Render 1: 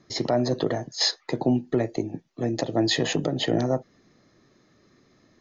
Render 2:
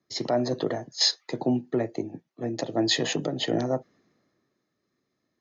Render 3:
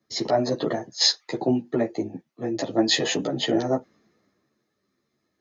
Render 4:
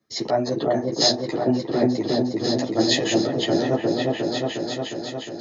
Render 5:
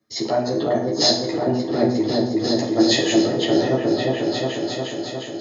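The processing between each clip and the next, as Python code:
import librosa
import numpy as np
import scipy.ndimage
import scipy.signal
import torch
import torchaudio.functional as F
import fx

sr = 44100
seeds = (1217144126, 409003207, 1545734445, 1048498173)

y1 = fx.highpass(x, sr, hz=140.0, slope=6)
y1 = fx.band_widen(y1, sr, depth_pct=40)
y1 = F.gain(torch.from_numpy(y1), -2.0).numpy()
y2 = fx.ensemble(y1, sr)
y2 = F.gain(torch.from_numpy(y2), 6.0).numpy()
y3 = fx.echo_opening(y2, sr, ms=358, hz=750, octaves=1, feedback_pct=70, wet_db=0)
y4 = fx.rev_plate(y3, sr, seeds[0], rt60_s=0.72, hf_ratio=0.85, predelay_ms=0, drr_db=3.0)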